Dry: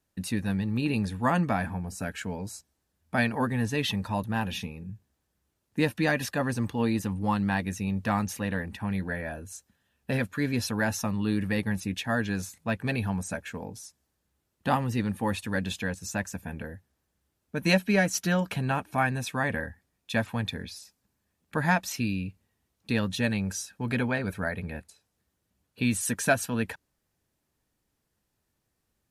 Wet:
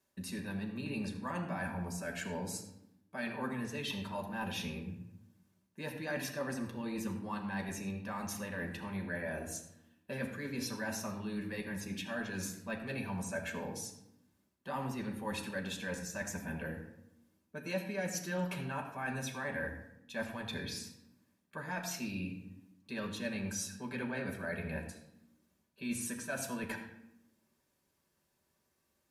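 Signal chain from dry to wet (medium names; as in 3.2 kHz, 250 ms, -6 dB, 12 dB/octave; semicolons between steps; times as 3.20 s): high-pass 250 Hz 6 dB/octave; reverse; compression 6:1, threshold -38 dBFS, peak gain reduction 19 dB; reverse; reverberation RT60 0.80 s, pre-delay 5 ms, DRR 1 dB; trim -2 dB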